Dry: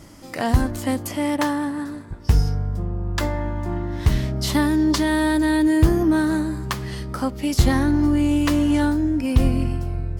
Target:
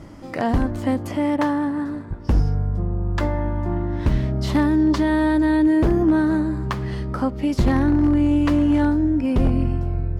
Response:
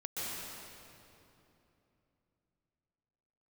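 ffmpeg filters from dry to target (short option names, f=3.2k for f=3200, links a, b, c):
-filter_complex "[0:a]lowpass=f=1.4k:p=1,asplit=2[a][b];[b]acompressor=threshold=-29dB:ratio=6,volume=-2.5dB[c];[a][c]amix=inputs=2:normalize=0,aeval=exprs='0.316*(abs(mod(val(0)/0.316+3,4)-2)-1)':c=same"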